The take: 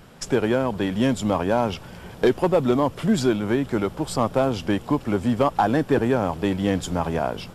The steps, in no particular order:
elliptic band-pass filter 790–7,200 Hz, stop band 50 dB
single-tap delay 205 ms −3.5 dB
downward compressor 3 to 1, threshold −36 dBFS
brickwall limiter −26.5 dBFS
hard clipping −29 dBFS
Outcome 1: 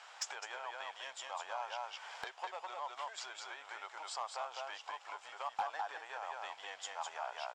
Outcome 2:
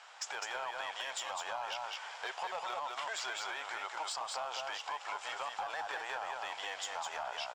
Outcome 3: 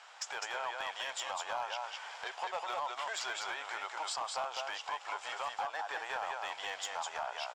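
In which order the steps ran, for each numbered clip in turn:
single-tap delay, then downward compressor, then elliptic band-pass filter, then hard clipping, then brickwall limiter
elliptic band-pass filter, then brickwall limiter, then hard clipping, then single-tap delay, then downward compressor
elliptic band-pass filter, then downward compressor, then brickwall limiter, then single-tap delay, then hard clipping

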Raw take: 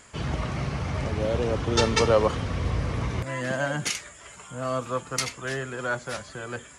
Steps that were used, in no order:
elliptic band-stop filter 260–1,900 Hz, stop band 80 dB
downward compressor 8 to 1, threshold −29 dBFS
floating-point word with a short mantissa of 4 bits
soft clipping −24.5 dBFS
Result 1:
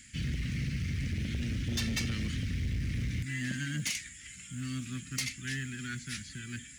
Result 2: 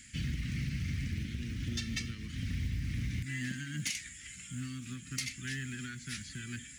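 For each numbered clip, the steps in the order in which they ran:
elliptic band-stop filter, then floating-point word with a short mantissa, then soft clipping, then downward compressor
downward compressor, then elliptic band-stop filter, then soft clipping, then floating-point word with a short mantissa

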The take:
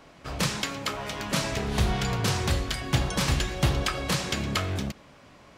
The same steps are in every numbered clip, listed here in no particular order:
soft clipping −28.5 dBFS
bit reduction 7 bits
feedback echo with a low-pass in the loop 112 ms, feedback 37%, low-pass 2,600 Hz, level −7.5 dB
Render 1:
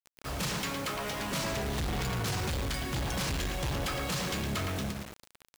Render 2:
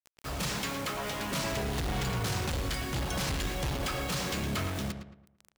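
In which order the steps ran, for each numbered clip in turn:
feedback echo with a low-pass in the loop, then soft clipping, then bit reduction
soft clipping, then bit reduction, then feedback echo with a low-pass in the loop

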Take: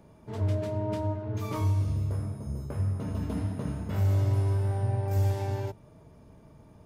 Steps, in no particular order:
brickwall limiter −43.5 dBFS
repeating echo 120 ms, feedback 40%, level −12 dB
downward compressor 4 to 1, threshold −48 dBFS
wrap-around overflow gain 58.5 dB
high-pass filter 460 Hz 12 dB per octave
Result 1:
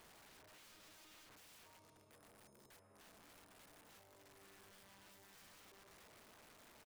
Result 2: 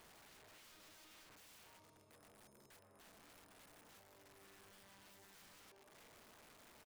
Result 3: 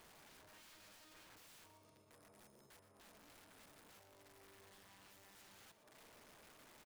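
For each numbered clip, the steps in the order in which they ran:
repeating echo, then downward compressor, then brickwall limiter, then high-pass filter, then wrap-around overflow
downward compressor, then repeating echo, then brickwall limiter, then high-pass filter, then wrap-around overflow
downward compressor, then brickwall limiter, then high-pass filter, then wrap-around overflow, then repeating echo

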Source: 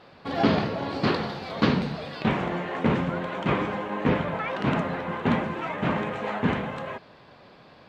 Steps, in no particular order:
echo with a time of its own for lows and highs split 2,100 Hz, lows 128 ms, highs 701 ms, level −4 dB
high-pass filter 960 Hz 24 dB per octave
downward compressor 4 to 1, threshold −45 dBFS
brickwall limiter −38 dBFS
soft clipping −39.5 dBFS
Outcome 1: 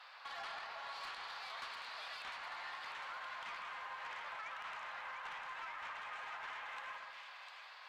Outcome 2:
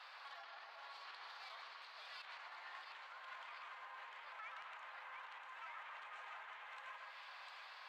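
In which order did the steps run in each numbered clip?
high-pass filter, then downward compressor, then soft clipping, then echo with a time of its own for lows and highs, then brickwall limiter
downward compressor, then echo with a time of its own for lows and highs, then brickwall limiter, then high-pass filter, then soft clipping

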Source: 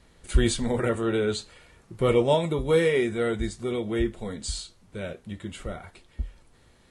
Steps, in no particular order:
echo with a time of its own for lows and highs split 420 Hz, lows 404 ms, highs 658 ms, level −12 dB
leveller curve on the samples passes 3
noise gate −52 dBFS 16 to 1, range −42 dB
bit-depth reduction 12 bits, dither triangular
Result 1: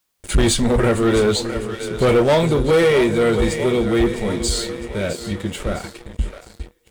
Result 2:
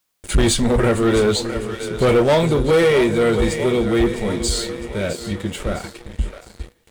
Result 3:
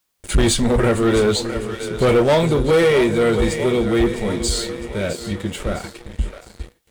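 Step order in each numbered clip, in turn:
noise gate, then echo with a time of its own for lows and highs, then leveller curve on the samples, then bit-depth reduction
echo with a time of its own for lows and highs, then leveller curve on the samples, then noise gate, then bit-depth reduction
echo with a time of its own for lows and highs, then noise gate, then leveller curve on the samples, then bit-depth reduction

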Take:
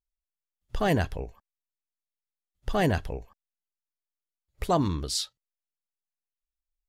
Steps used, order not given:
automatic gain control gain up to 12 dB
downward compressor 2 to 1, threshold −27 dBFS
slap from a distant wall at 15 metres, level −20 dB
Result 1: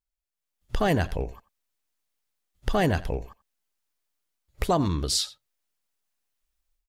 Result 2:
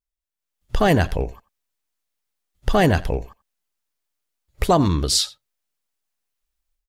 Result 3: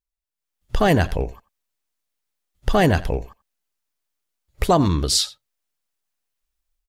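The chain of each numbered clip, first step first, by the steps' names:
automatic gain control, then slap from a distant wall, then downward compressor
downward compressor, then automatic gain control, then slap from a distant wall
slap from a distant wall, then downward compressor, then automatic gain control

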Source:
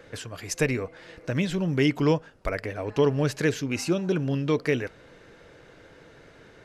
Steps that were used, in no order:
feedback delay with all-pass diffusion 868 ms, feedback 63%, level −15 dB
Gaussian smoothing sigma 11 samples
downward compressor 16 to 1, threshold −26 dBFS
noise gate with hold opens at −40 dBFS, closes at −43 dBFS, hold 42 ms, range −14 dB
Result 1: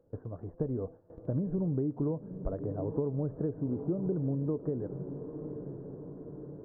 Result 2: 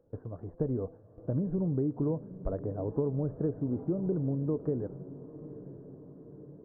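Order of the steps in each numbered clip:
feedback delay with all-pass diffusion, then downward compressor, then Gaussian smoothing, then noise gate with hold
Gaussian smoothing, then downward compressor, then noise gate with hold, then feedback delay with all-pass diffusion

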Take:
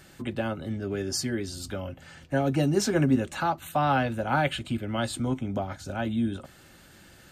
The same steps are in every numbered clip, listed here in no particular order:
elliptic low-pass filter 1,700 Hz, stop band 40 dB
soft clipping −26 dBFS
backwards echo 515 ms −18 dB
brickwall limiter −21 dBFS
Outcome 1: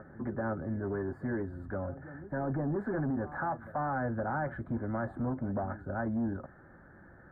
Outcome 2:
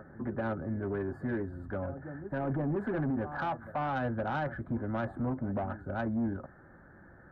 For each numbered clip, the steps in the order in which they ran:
brickwall limiter, then backwards echo, then soft clipping, then elliptic low-pass filter
elliptic low-pass filter, then backwards echo, then brickwall limiter, then soft clipping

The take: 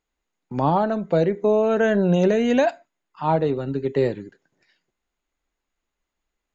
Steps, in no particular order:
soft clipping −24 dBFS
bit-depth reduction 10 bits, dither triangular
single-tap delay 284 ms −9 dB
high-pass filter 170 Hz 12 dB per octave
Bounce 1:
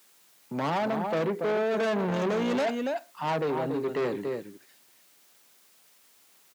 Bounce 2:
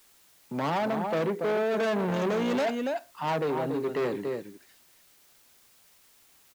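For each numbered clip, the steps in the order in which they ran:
single-tap delay, then bit-depth reduction, then soft clipping, then high-pass filter
single-tap delay, then soft clipping, then high-pass filter, then bit-depth reduction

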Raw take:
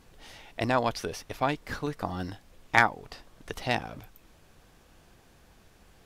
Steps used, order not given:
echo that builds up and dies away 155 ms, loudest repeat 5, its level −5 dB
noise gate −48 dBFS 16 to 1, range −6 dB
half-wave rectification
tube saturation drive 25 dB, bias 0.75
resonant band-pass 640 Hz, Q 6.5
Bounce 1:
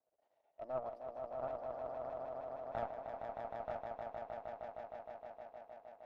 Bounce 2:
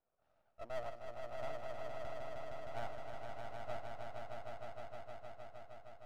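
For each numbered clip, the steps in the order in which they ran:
half-wave rectification, then resonant band-pass, then noise gate, then echo that builds up and dies away, then tube saturation
resonant band-pass, then tube saturation, then half-wave rectification, then noise gate, then echo that builds up and dies away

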